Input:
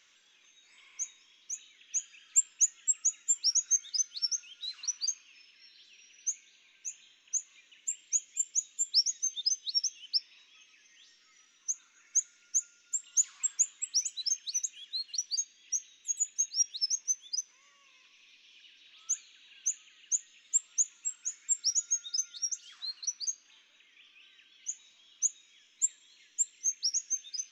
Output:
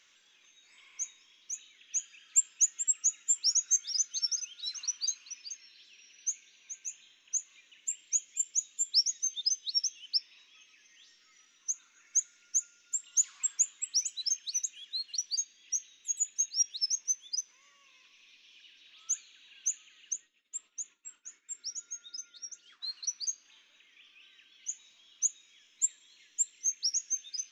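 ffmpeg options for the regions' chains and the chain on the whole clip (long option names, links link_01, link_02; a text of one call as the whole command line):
ffmpeg -i in.wav -filter_complex "[0:a]asettb=1/sr,asplit=3[link_01][link_02][link_03];[link_01]atrim=end=2.014[link_04];[link_02]atrim=start=2.01:end=6.88,asetpts=PTS-STARTPTS,afade=type=in:duration=0.004:curve=qsin,afade=type=out:start_time=4.866:duration=0.004:curve=qsin,highpass=59,aecho=1:1:429:0.299,atrim=end_sample=214767[link_05];[link_03]atrim=start=6.876[link_06];[link_04][link_05]acrossfade=duration=0.004:curve1=hsin:curve2=qsin[link_07];[link_07][link_06]acrossfade=duration=0.004:curve1=qsin:curve2=hsin,asettb=1/sr,asplit=3[link_08][link_09][link_10];[link_08]atrim=end=20.134[link_11];[link_09]atrim=start=20.13:end=22.83,asetpts=PTS-STARTPTS,afade=type=in:duration=0.004:curve=qsin,afade=type=out:start_time=2.696:duration=0.004:curve=qsin,agate=range=-33dB:threshold=-53dB:ratio=3:release=100:detection=peak,lowpass=frequency=1800:poles=1,equalizer=frequency=360:width=1.1:gain=4.5[link_12];[link_10]atrim=start=22.826[link_13];[link_11][link_12]acrossfade=duration=0.004:curve1=hsin:curve2=qsin[link_14];[link_14][link_13]acrossfade=duration=0.004:curve1=qsin:curve2=hsin" out.wav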